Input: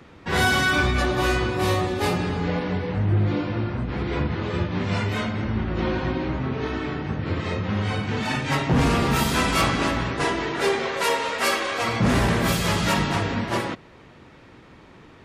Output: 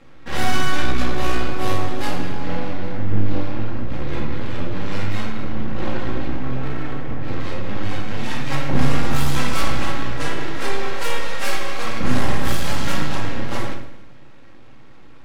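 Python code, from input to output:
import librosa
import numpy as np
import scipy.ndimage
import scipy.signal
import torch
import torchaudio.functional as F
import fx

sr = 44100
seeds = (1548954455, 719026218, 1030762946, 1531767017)

y = fx.lowpass(x, sr, hz=2900.0, slope=12, at=(6.57, 7.21))
y = np.maximum(y, 0.0)
y = fx.echo_feedback(y, sr, ms=114, feedback_pct=47, wet_db=-15.0)
y = fx.room_shoebox(y, sr, seeds[0], volume_m3=1000.0, walls='furnished', distance_m=2.2)
y = y * 10.0 ** (-1.0 / 20.0)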